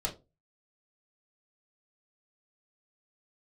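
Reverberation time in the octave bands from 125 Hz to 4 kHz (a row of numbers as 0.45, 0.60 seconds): 0.40, 0.30, 0.30, 0.25, 0.15, 0.20 seconds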